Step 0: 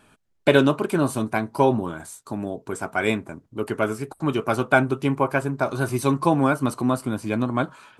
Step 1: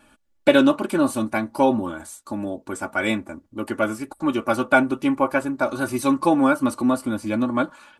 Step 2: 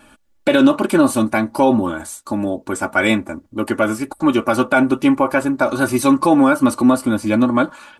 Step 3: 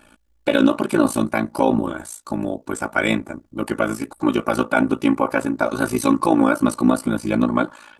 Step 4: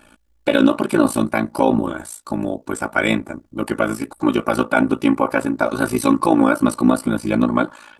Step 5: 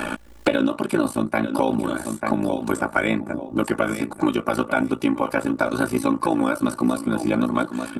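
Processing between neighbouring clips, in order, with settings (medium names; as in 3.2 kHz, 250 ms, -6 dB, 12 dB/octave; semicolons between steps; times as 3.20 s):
comb 3.5 ms, depth 74%; trim -1 dB
peak limiter -11 dBFS, peak gain reduction 9 dB; trim +7.5 dB
AM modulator 56 Hz, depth 75%
dynamic bell 6.5 kHz, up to -6 dB, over -57 dBFS, Q 6.7; trim +1.5 dB
feedback delay 892 ms, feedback 19%, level -14 dB; three bands compressed up and down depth 100%; trim -4.5 dB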